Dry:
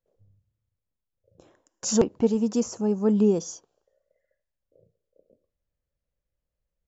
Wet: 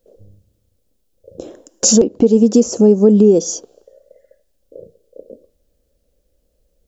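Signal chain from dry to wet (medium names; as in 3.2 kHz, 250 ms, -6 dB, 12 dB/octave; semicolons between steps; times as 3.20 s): graphic EQ 125/250/500/1000/2000 Hz -10/+5/+7/-10/-8 dB; compression 2.5:1, threshold -31 dBFS, peak gain reduction 14 dB; loudness maximiser +21.5 dB; trim -1 dB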